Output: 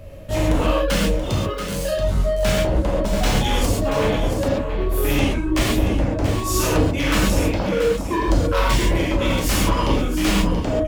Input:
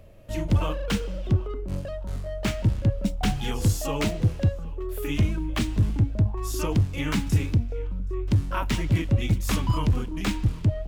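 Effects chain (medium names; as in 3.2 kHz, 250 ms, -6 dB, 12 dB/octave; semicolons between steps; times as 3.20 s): 7.57–8.20 s: formants replaced by sine waves; reverb removal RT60 0.93 s; 1.15–1.91 s: tilt EQ +4 dB/octave; in parallel at +2.5 dB: compression, threshold -27 dBFS, peak gain reduction 10.5 dB; on the sum: wavefolder -18 dBFS; 3.66–4.24 s: distance through air 390 m; on a send: delay 681 ms -9 dB; on the sum: gated-style reverb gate 160 ms flat, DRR -5 dB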